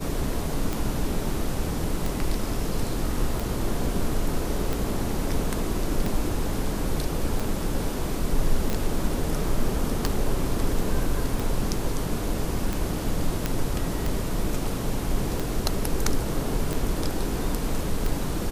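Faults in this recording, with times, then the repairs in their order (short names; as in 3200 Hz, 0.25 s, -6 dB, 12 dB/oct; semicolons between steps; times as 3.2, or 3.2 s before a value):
tick 45 rpm
8.7 pop
13.46 pop -10 dBFS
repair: de-click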